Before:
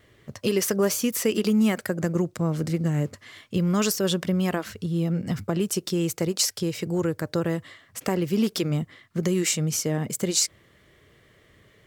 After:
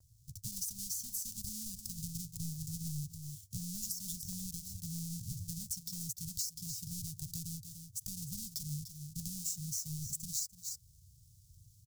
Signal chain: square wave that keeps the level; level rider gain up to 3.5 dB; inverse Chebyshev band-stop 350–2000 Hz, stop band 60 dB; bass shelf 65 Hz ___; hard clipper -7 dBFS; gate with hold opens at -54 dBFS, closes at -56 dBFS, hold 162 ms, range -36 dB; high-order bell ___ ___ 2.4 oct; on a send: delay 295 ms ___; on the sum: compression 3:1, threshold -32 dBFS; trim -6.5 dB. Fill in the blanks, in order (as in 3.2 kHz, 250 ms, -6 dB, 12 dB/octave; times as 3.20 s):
-4 dB, 1.1 kHz, +8 dB, -13 dB